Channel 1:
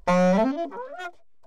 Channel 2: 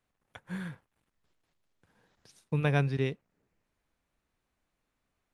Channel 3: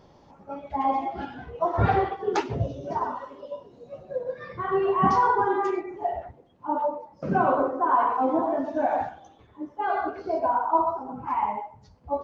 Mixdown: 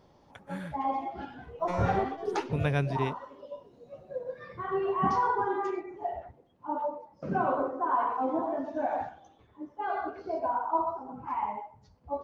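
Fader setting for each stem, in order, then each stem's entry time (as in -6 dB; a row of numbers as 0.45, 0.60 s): -15.0, -1.5, -6.0 dB; 1.60, 0.00, 0.00 s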